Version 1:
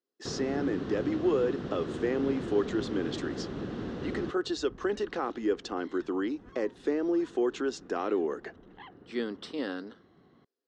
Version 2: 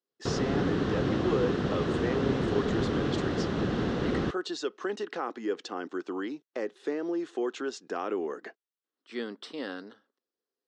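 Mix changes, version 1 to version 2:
first sound +10.0 dB; second sound: muted; master: add bell 290 Hz -4 dB 1.4 oct

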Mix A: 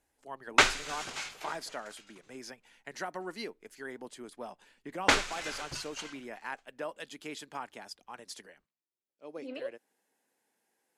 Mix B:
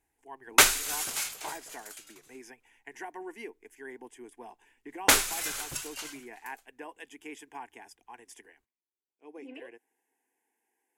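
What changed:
speech: add fixed phaser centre 860 Hz, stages 8; background: remove air absorption 130 m

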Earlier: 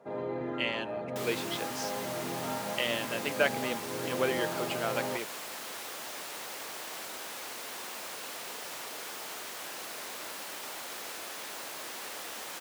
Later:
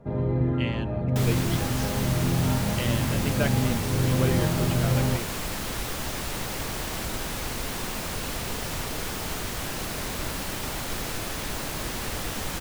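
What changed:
speech -3.0 dB; second sound +7.0 dB; master: remove HPF 470 Hz 12 dB/oct

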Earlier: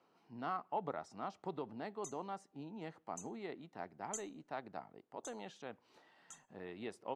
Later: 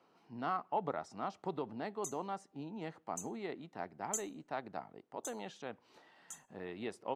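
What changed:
speech +3.5 dB; background: remove air absorption 74 m

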